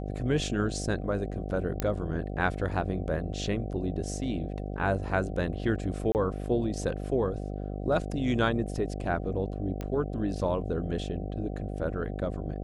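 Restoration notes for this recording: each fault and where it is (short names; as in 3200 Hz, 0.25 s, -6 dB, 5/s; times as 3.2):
buzz 50 Hz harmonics 15 -35 dBFS
1.8 pop -14 dBFS
6.12–6.15 gap 29 ms
9.81 pop -22 dBFS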